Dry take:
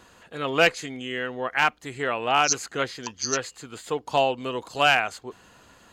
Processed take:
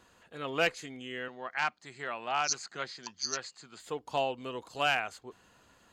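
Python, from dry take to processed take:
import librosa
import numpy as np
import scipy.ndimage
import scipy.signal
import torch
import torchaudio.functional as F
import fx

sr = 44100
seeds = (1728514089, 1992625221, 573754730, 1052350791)

y = fx.cabinet(x, sr, low_hz=100.0, low_slope=24, high_hz=8200.0, hz=(120.0, 280.0, 470.0, 2900.0, 4500.0), db=(-8, -8, -9, -4, 7), at=(1.28, 3.8))
y = y * librosa.db_to_amplitude(-9.0)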